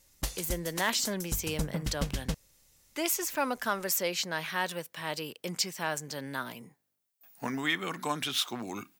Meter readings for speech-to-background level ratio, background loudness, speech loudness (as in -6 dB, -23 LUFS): 4.5 dB, -37.0 LUFS, -32.5 LUFS